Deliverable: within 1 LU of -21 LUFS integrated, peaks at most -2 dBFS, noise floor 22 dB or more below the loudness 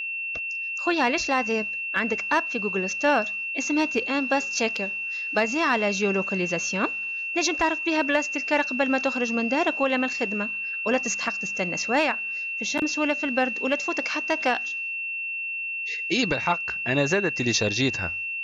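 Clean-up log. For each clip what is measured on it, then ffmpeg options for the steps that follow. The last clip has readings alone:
steady tone 2.7 kHz; tone level -28 dBFS; loudness -24.5 LUFS; peak level -11.0 dBFS; loudness target -21.0 LUFS
-> -af "bandreject=f=2700:w=30"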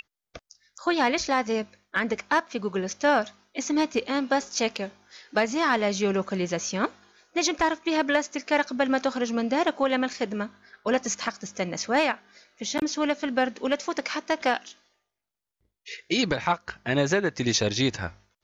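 steady tone not found; loudness -26.5 LUFS; peak level -11.5 dBFS; loudness target -21.0 LUFS
-> -af "volume=1.88"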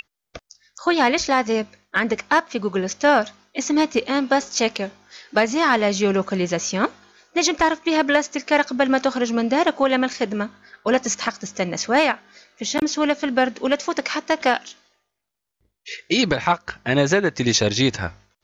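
loudness -21.0 LUFS; peak level -6.0 dBFS; noise floor -80 dBFS

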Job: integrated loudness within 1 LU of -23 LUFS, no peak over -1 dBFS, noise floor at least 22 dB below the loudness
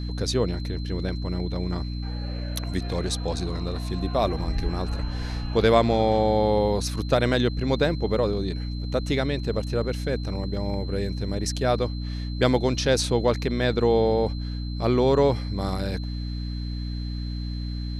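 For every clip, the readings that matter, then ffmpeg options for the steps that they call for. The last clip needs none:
hum 60 Hz; highest harmonic 300 Hz; hum level -28 dBFS; steady tone 4.1 kHz; tone level -43 dBFS; loudness -25.5 LUFS; peak level -5.5 dBFS; loudness target -23.0 LUFS
-> -af "bandreject=f=60:t=h:w=4,bandreject=f=120:t=h:w=4,bandreject=f=180:t=h:w=4,bandreject=f=240:t=h:w=4,bandreject=f=300:t=h:w=4"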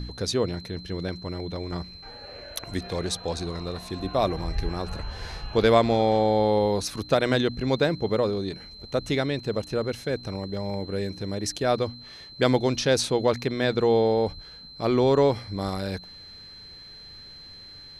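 hum not found; steady tone 4.1 kHz; tone level -43 dBFS
-> -af "bandreject=f=4100:w=30"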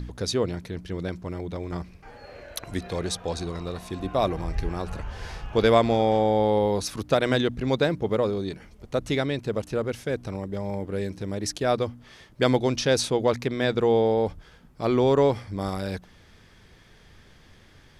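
steady tone not found; loudness -26.0 LUFS; peak level -6.5 dBFS; loudness target -23.0 LUFS
-> -af "volume=1.41"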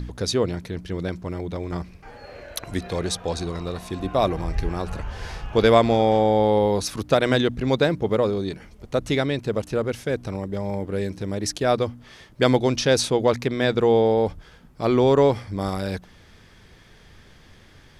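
loudness -23.0 LUFS; peak level -3.5 dBFS; noise floor -51 dBFS

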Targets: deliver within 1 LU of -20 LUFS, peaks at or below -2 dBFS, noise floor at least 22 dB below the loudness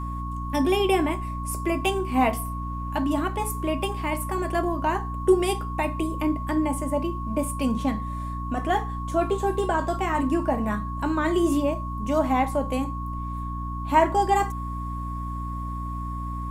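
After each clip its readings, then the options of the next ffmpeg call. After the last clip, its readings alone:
hum 60 Hz; highest harmonic 300 Hz; hum level -29 dBFS; steady tone 1.1 kHz; tone level -34 dBFS; loudness -26.0 LUFS; peak level -6.0 dBFS; loudness target -20.0 LUFS
-> -af "bandreject=f=60:t=h:w=4,bandreject=f=120:t=h:w=4,bandreject=f=180:t=h:w=4,bandreject=f=240:t=h:w=4,bandreject=f=300:t=h:w=4"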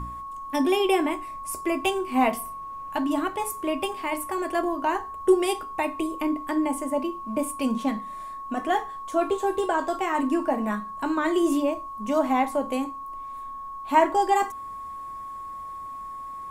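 hum not found; steady tone 1.1 kHz; tone level -34 dBFS
-> -af "bandreject=f=1100:w=30"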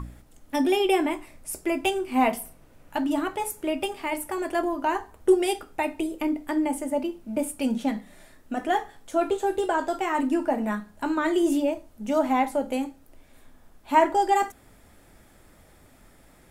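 steady tone not found; loudness -26.5 LUFS; peak level -7.0 dBFS; loudness target -20.0 LUFS
-> -af "volume=2.11,alimiter=limit=0.794:level=0:latency=1"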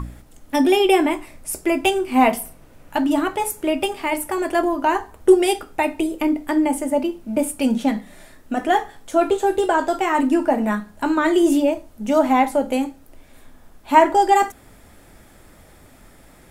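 loudness -20.0 LUFS; peak level -2.0 dBFS; noise floor -49 dBFS

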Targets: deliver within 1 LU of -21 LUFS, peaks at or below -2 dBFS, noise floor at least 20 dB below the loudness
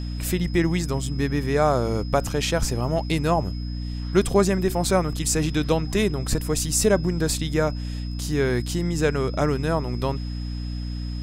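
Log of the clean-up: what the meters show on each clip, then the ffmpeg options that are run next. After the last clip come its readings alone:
hum 60 Hz; highest harmonic 300 Hz; hum level -27 dBFS; steady tone 5.1 kHz; tone level -43 dBFS; loudness -24.0 LUFS; peak level -5.0 dBFS; loudness target -21.0 LUFS
-> -af "bandreject=f=60:t=h:w=4,bandreject=f=120:t=h:w=4,bandreject=f=180:t=h:w=4,bandreject=f=240:t=h:w=4,bandreject=f=300:t=h:w=4"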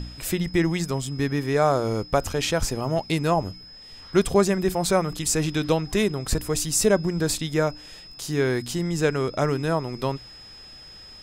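hum not found; steady tone 5.1 kHz; tone level -43 dBFS
-> -af "bandreject=f=5100:w=30"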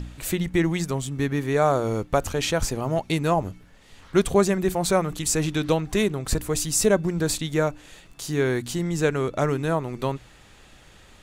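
steady tone not found; loudness -24.0 LUFS; peak level -6.0 dBFS; loudness target -21.0 LUFS
-> -af "volume=1.41"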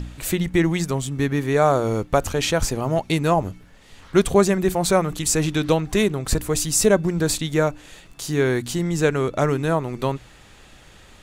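loudness -21.0 LUFS; peak level -3.0 dBFS; noise floor -49 dBFS

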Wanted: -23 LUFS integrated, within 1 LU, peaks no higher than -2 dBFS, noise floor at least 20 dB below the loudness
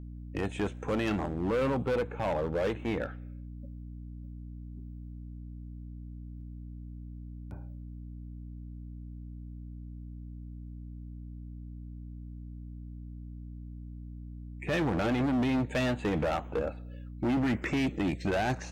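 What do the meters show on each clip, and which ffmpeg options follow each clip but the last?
hum 60 Hz; highest harmonic 300 Hz; hum level -40 dBFS; loudness -31.0 LUFS; peak level -22.5 dBFS; loudness target -23.0 LUFS
-> -af "bandreject=f=60:t=h:w=6,bandreject=f=120:t=h:w=6,bandreject=f=180:t=h:w=6,bandreject=f=240:t=h:w=6,bandreject=f=300:t=h:w=6"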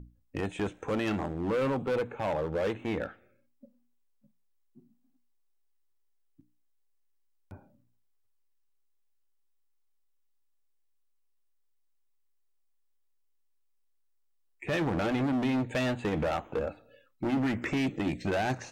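hum not found; loudness -31.0 LUFS; peak level -20.0 dBFS; loudness target -23.0 LUFS
-> -af "volume=2.51"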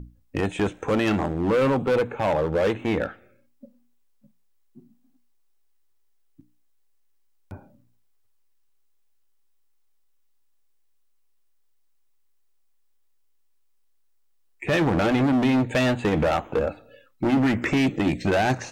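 loudness -23.5 LUFS; peak level -12.0 dBFS; noise floor -62 dBFS

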